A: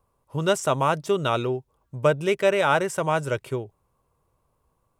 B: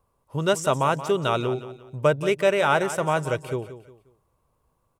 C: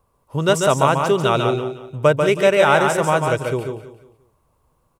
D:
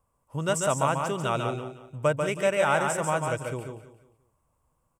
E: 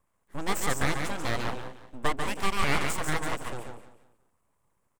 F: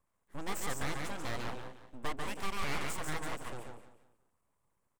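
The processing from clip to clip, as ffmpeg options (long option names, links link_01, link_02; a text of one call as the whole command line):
ffmpeg -i in.wav -af "aecho=1:1:178|356|534:0.224|0.0761|0.0259" out.wav
ffmpeg -i in.wav -af "aecho=1:1:142:0.562,volume=5dB" out.wav
ffmpeg -i in.wav -af "equalizer=frequency=400:width_type=o:width=0.33:gain=-7,equalizer=frequency=4000:width_type=o:width=0.33:gain=-9,equalizer=frequency=8000:width_type=o:width=0.33:gain=8,volume=-8.5dB" out.wav
ffmpeg -i in.wav -af "aeval=exprs='abs(val(0))':channel_layout=same" out.wav
ffmpeg -i in.wav -af "aeval=exprs='(tanh(5.01*val(0)+0.55)-tanh(0.55))/5.01':channel_layout=same,volume=-3dB" out.wav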